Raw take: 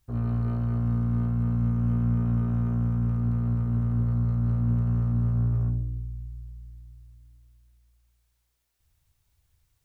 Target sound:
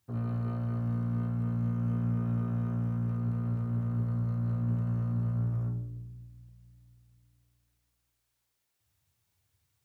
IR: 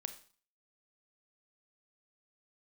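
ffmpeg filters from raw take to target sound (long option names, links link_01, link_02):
-filter_complex "[0:a]highpass=frequency=92:width=0.5412,highpass=frequency=92:width=1.3066[link_01];[1:a]atrim=start_sample=2205[link_02];[link_01][link_02]afir=irnorm=-1:irlink=0"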